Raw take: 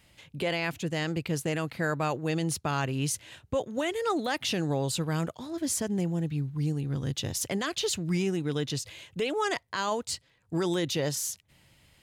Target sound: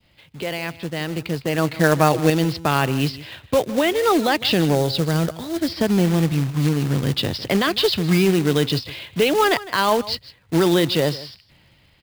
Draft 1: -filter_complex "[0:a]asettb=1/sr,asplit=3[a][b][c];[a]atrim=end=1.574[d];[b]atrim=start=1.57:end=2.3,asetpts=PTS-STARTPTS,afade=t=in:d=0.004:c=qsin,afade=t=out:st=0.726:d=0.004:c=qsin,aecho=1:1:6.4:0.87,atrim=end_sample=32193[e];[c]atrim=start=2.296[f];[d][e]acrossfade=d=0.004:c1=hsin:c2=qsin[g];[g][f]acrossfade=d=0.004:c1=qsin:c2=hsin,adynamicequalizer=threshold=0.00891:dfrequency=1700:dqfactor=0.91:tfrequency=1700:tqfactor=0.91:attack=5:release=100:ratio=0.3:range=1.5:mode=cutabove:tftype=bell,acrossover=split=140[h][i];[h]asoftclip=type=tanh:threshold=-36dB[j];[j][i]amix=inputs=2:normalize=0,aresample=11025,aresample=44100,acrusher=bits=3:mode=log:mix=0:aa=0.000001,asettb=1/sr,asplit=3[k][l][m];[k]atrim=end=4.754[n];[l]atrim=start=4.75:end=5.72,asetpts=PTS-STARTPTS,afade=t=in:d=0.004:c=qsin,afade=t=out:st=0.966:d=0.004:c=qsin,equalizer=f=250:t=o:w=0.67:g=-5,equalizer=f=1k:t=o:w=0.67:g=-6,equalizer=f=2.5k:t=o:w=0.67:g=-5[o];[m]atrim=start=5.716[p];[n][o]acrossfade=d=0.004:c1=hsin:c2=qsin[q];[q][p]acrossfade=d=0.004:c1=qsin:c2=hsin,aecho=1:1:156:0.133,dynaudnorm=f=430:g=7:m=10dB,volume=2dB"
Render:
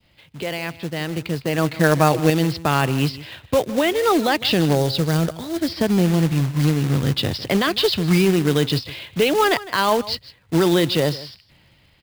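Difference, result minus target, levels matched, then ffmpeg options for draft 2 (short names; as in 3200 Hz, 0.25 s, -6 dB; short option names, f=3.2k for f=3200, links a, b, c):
soft clip: distortion -7 dB
-filter_complex "[0:a]asettb=1/sr,asplit=3[a][b][c];[a]atrim=end=1.574[d];[b]atrim=start=1.57:end=2.3,asetpts=PTS-STARTPTS,afade=t=in:d=0.004:c=qsin,afade=t=out:st=0.726:d=0.004:c=qsin,aecho=1:1:6.4:0.87,atrim=end_sample=32193[e];[c]atrim=start=2.296[f];[d][e]acrossfade=d=0.004:c1=hsin:c2=qsin[g];[g][f]acrossfade=d=0.004:c1=qsin:c2=hsin,adynamicequalizer=threshold=0.00891:dfrequency=1700:dqfactor=0.91:tfrequency=1700:tqfactor=0.91:attack=5:release=100:ratio=0.3:range=1.5:mode=cutabove:tftype=bell,acrossover=split=140[h][i];[h]asoftclip=type=tanh:threshold=-42.5dB[j];[j][i]amix=inputs=2:normalize=0,aresample=11025,aresample=44100,acrusher=bits=3:mode=log:mix=0:aa=0.000001,asettb=1/sr,asplit=3[k][l][m];[k]atrim=end=4.754[n];[l]atrim=start=4.75:end=5.72,asetpts=PTS-STARTPTS,afade=t=in:d=0.004:c=qsin,afade=t=out:st=0.966:d=0.004:c=qsin,equalizer=f=250:t=o:w=0.67:g=-5,equalizer=f=1k:t=o:w=0.67:g=-6,equalizer=f=2.5k:t=o:w=0.67:g=-5[o];[m]atrim=start=5.716[p];[n][o]acrossfade=d=0.004:c1=hsin:c2=qsin[q];[q][p]acrossfade=d=0.004:c1=qsin:c2=hsin,aecho=1:1:156:0.133,dynaudnorm=f=430:g=7:m=10dB,volume=2dB"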